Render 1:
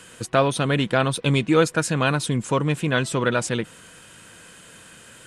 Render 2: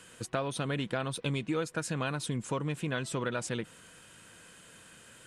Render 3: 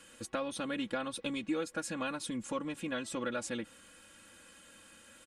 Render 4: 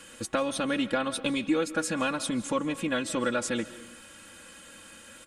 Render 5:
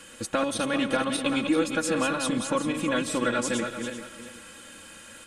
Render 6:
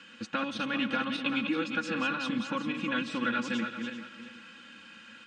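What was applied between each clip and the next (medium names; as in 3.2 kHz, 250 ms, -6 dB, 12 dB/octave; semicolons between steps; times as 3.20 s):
compression 4:1, threshold -21 dBFS, peak gain reduction 8 dB; trim -8 dB
comb 3.6 ms, depth 83%; trim -5 dB
reverberation RT60 0.80 s, pre-delay 110 ms, DRR 15 dB; trim +8 dB
backward echo that repeats 195 ms, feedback 50%, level -5.5 dB; trim +1.5 dB
cabinet simulation 140–5200 Hz, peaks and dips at 220 Hz +8 dB, 400 Hz -9 dB, 630 Hz -10 dB, 1.5 kHz +5 dB, 2.7 kHz +7 dB; trim -5.5 dB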